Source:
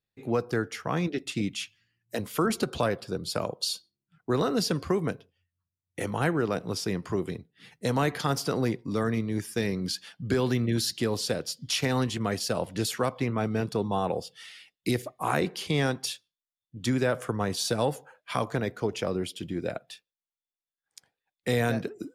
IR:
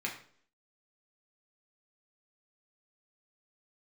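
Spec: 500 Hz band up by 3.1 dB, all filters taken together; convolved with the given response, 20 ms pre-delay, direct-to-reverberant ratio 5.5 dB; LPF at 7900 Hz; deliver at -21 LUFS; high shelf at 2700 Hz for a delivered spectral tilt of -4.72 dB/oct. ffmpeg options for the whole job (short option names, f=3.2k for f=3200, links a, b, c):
-filter_complex "[0:a]lowpass=7.9k,equalizer=f=500:t=o:g=3.5,highshelf=f=2.7k:g=5.5,asplit=2[a][b];[1:a]atrim=start_sample=2205,adelay=20[c];[b][c]afir=irnorm=-1:irlink=0,volume=-9.5dB[d];[a][d]amix=inputs=2:normalize=0,volume=5.5dB"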